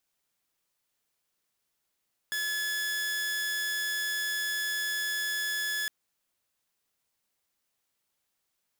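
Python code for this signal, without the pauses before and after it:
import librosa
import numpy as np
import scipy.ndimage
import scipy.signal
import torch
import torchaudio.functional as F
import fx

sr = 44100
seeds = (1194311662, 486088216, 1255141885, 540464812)

y = 10.0 ** (-26.5 / 20.0) * (2.0 * np.mod(1710.0 * (np.arange(round(3.56 * sr)) / sr), 1.0) - 1.0)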